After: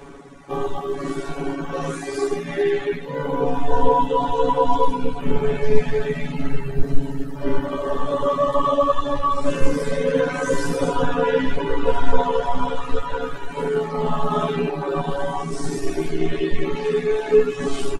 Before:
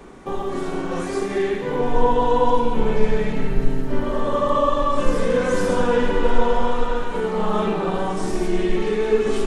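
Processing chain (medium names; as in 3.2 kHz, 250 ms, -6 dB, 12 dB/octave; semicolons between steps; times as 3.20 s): reverb removal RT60 1.3 s; granular stretch 1.9×, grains 30 ms; trim +3 dB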